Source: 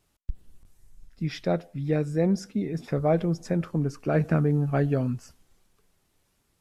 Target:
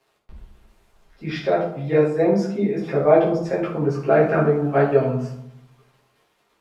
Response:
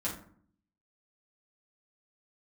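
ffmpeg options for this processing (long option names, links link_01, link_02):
-filter_complex "[0:a]acrusher=bits=10:mix=0:aa=0.000001,acrossover=split=310 4000:gain=0.1 1 0.2[link_01][link_02][link_03];[link_01][link_02][link_03]amix=inputs=3:normalize=0[link_04];[1:a]atrim=start_sample=2205,asetrate=29988,aresample=44100[link_05];[link_04][link_05]afir=irnorm=-1:irlink=0,volume=4.5dB"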